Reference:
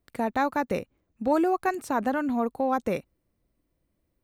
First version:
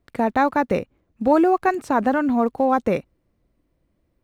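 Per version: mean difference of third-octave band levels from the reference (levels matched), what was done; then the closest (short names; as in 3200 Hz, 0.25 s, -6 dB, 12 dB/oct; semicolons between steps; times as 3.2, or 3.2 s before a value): 2.0 dB: block floating point 7-bit; LPF 3100 Hz 6 dB/oct; gain +7 dB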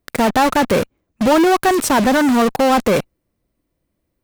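9.0 dB: low shelf 81 Hz -4 dB; in parallel at -7.5 dB: fuzz box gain 52 dB, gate -45 dBFS; on the sum: gain +4.5 dB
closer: first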